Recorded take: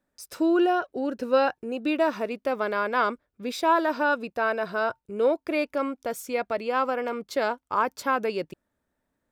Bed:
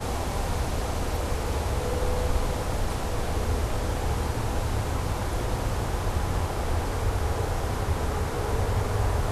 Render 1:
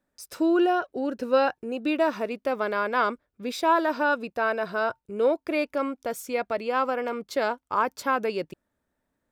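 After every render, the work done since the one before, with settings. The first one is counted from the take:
no processing that can be heard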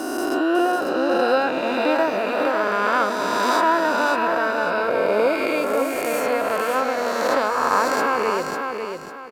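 peak hold with a rise ahead of every peak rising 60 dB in 2.87 s
repeating echo 549 ms, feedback 32%, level −5.5 dB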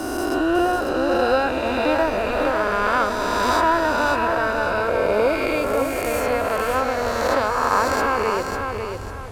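mix in bed −9.5 dB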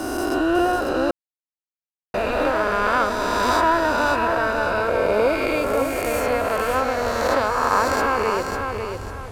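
0:01.11–0:02.14: silence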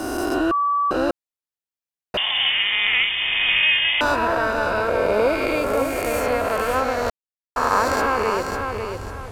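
0:00.51–0:00.91: beep over 1,150 Hz −17 dBFS
0:02.17–0:04.01: voice inversion scrambler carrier 3,500 Hz
0:07.10–0:07.56: silence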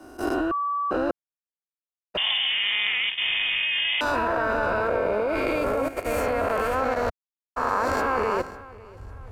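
output level in coarse steps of 12 dB
multiband upward and downward expander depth 70%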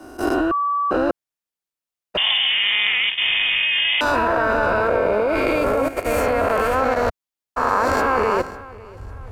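level +5.5 dB

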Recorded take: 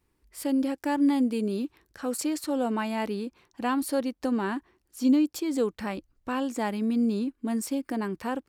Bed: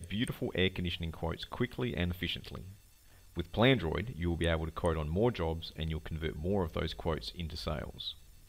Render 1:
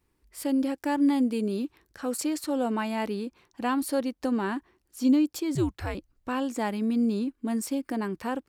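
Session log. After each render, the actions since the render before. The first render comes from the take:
0:05.55–0:05.95: frequency shifter −130 Hz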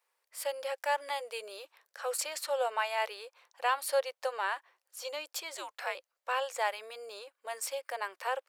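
elliptic high-pass filter 520 Hz, stop band 50 dB
dynamic equaliser 2,600 Hz, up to +4 dB, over −48 dBFS, Q 0.89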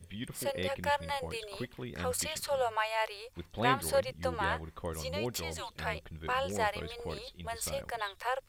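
mix in bed −7 dB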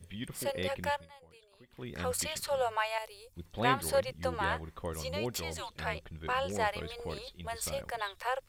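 0:00.85–0:01.88: duck −20 dB, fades 0.23 s
0:02.98–0:03.46: drawn EQ curve 160 Hz 0 dB, 1,600 Hz −15 dB, 10,000 Hz +1 dB
0:05.66–0:06.72: high-shelf EQ 12,000 Hz −6 dB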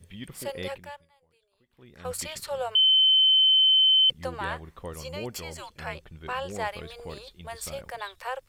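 0:00.78–0:02.05: clip gain −9.5 dB
0:02.75–0:04.10: beep over 3,070 Hz −16 dBFS
0:04.97–0:05.93: Butterworth band-reject 3,700 Hz, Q 7.9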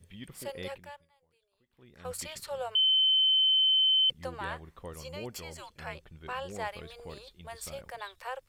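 level −5 dB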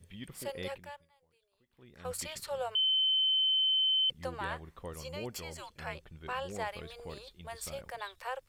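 brickwall limiter −25 dBFS, peak gain reduction 4 dB

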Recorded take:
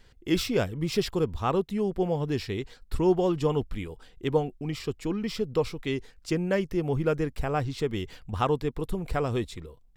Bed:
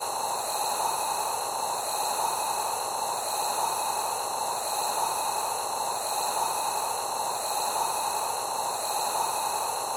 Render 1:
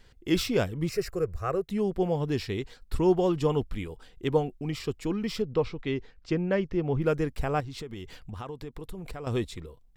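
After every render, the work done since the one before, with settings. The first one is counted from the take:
0:00.89–0:01.69: phaser with its sweep stopped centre 910 Hz, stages 6
0:05.42–0:07.02: high-frequency loss of the air 160 metres
0:07.60–0:09.27: downward compressor, threshold −35 dBFS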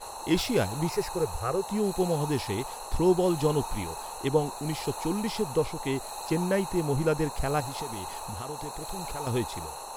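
mix in bed −9.5 dB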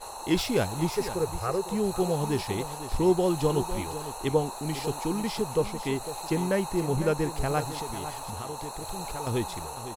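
single-tap delay 503 ms −12.5 dB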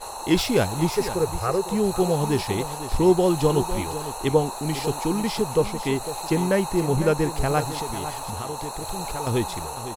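level +5 dB

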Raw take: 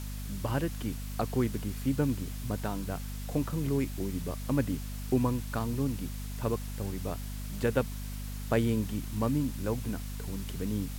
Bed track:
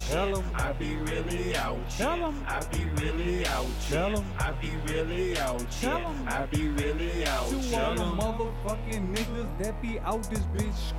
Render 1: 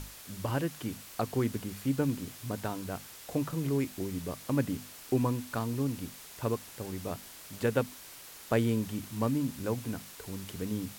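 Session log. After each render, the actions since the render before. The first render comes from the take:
mains-hum notches 50/100/150/200/250 Hz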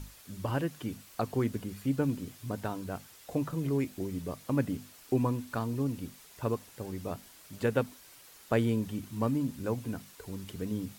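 broadband denoise 7 dB, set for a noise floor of −49 dBFS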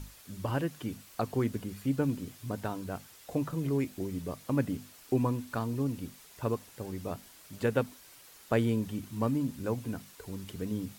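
no processing that can be heard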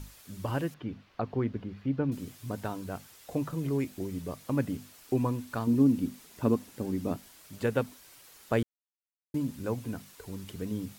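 0:00.74–0:02.12: high-frequency loss of the air 280 metres
0:05.67–0:07.17: parametric band 250 Hz +12 dB 1 octave
0:08.63–0:09.34: silence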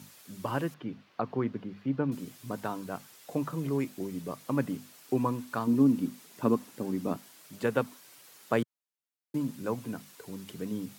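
high-pass filter 130 Hz 24 dB per octave
dynamic equaliser 1,100 Hz, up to +5 dB, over −49 dBFS, Q 1.9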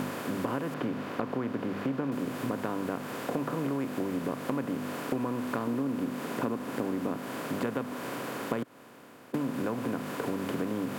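compressor on every frequency bin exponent 0.4
downward compressor, threshold −28 dBFS, peak gain reduction 11.5 dB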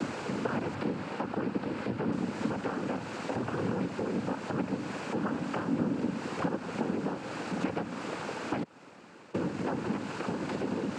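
cochlear-implant simulation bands 8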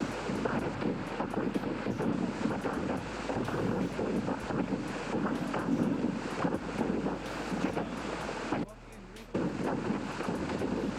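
mix in bed track −18.5 dB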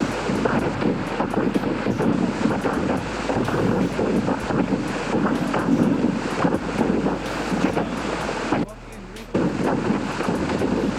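level +11 dB

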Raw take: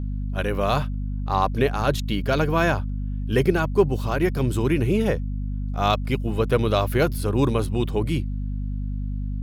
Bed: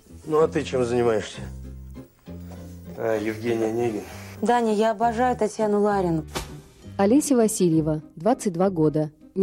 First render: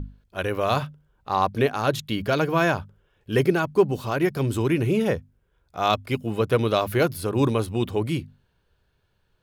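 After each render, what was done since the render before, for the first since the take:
mains-hum notches 50/100/150/200/250 Hz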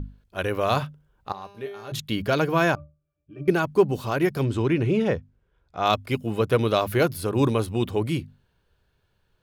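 0:01.32–0:01.92: tuned comb filter 200 Hz, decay 0.86 s, mix 90%
0:02.75–0:03.48: resonances in every octave D, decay 0.26 s
0:04.44–0:05.86: high-frequency loss of the air 85 metres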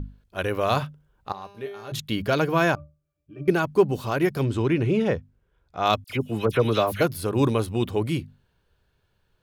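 0:06.04–0:07.01: all-pass dispersion lows, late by 56 ms, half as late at 2,000 Hz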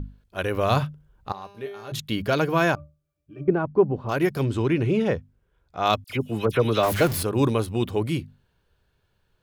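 0:00.54–0:01.32: low-shelf EQ 170 Hz +8 dB
0:03.44–0:04.09: low-pass filter 1,100 Hz
0:06.83–0:07.23: converter with a step at zero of −25 dBFS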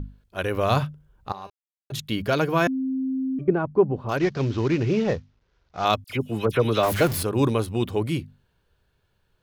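0:01.50–0:01.90: silence
0:02.67–0:03.39: beep over 263 Hz −23 dBFS
0:04.17–0:05.85: variable-slope delta modulation 32 kbit/s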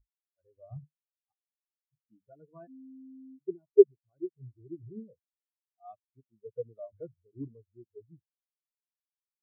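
every bin expanded away from the loudest bin 4 to 1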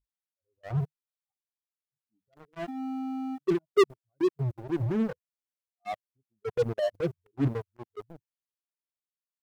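transient designer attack −9 dB, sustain +5 dB
leveller curve on the samples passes 5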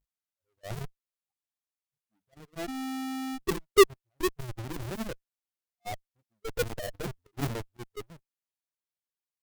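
each half-wave held at its own peak
harmonic generator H 3 −7 dB, 7 −25 dB, 8 −20 dB, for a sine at −15 dBFS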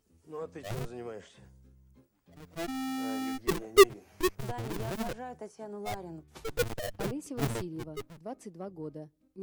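mix in bed −20.5 dB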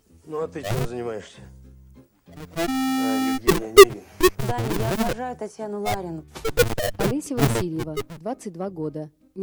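level +11.5 dB
brickwall limiter −2 dBFS, peak gain reduction 2.5 dB

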